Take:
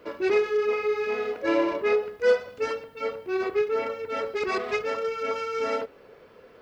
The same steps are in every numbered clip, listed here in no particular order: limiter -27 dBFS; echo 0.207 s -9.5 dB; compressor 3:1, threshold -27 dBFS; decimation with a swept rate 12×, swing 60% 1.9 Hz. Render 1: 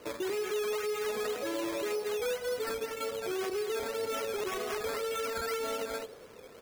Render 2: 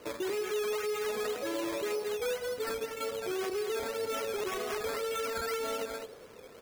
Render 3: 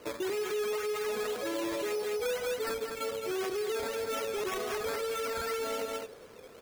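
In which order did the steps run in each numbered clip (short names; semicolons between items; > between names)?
echo > compressor > limiter > decimation with a swept rate; compressor > echo > limiter > decimation with a swept rate; decimation with a swept rate > echo > limiter > compressor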